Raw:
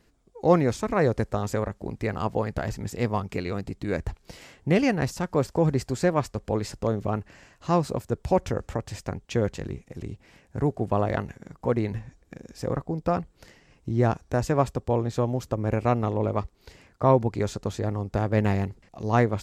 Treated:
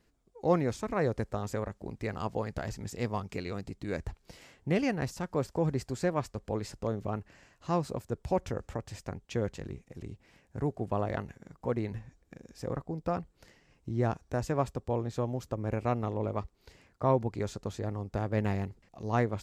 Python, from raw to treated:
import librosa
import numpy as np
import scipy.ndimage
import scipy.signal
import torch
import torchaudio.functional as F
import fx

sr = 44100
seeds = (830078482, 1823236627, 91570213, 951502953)

y = fx.dynamic_eq(x, sr, hz=5900.0, q=0.76, threshold_db=-53.0, ratio=4.0, max_db=4, at=(1.65, 4.07))
y = F.gain(torch.from_numpy(y), -7.0).numpy()